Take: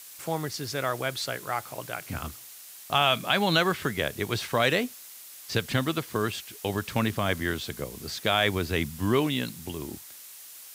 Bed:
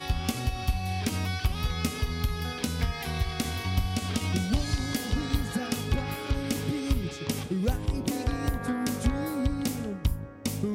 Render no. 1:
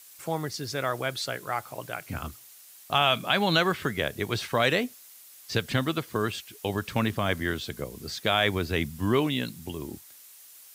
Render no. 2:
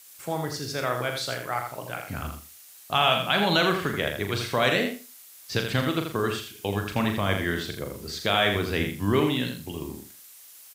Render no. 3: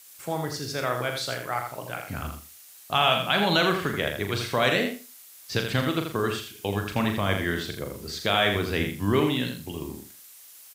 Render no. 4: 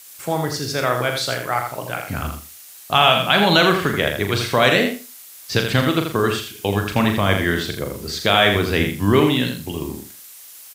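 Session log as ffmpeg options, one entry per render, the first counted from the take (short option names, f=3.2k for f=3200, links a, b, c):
-af "afftdn=nr=6:nf=-46"
-filter_complex "[0:a]asplit=2[a][b];[b]adelay=40,volume=-7.5dB[c];[a][c]amix=inputs=2:normalize=0,asplit=2[d][e];[e]aecho=0:1:82|164|246:0.473|0.0852|0.0153[f];[d][f]amix=inputs=2:normalize=0"
-af anull
-af "volume=7.5dB,alimiter=limit=-1dB:level=0:latency=1"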